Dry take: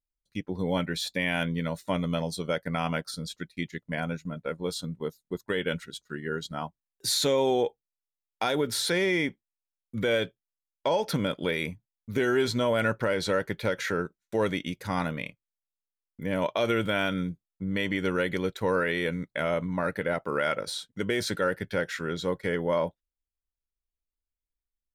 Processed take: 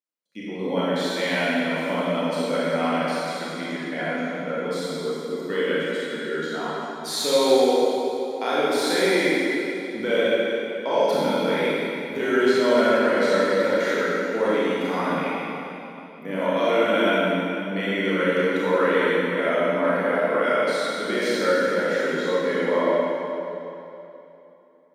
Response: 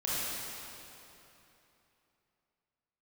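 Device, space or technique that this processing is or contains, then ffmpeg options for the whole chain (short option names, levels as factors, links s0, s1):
swimming-pool hall: -filter_complex "[0:a]highpass=f=220:w=0.5412,highpass=f=220:w=1.3066[s0];[1:a]atrim=start_sample=2205[s1];[s0][s1]afir=irnorm=-1:irlink=0,highshelf=f=3700:g=-7"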